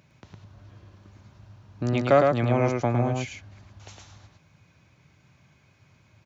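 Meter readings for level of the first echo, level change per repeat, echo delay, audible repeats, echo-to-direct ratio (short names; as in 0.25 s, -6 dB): -3.5 dB, no steady repeat, 0.109 s, 1, -3.5 dB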